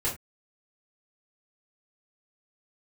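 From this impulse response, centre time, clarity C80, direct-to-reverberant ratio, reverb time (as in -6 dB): 24 ms, 17.0 dB, -7.0 dB, no single decay rate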